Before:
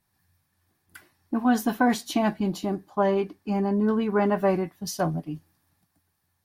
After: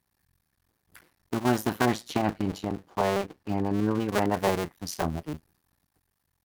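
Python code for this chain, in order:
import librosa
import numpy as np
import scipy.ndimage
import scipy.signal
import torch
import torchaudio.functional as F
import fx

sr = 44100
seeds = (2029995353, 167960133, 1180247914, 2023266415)

y = fx.cycle_switch(x, sr, every=2, mode='muted')
y = fx.high_shelf(y, sr, hz=6500.0, db=-6.5, at=(1.88, 4.09))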